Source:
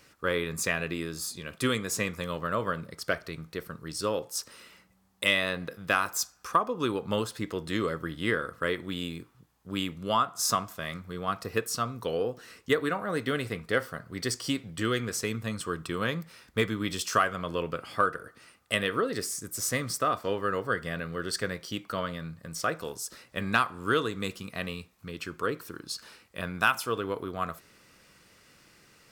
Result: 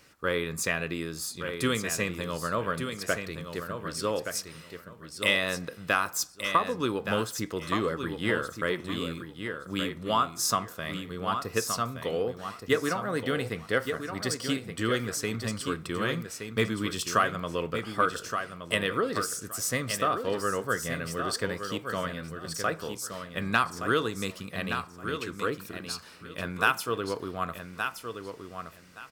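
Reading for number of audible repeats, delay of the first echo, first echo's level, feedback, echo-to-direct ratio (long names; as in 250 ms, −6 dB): 2, 1,171 ms, −7.5 dB, 20%, −7.5 dB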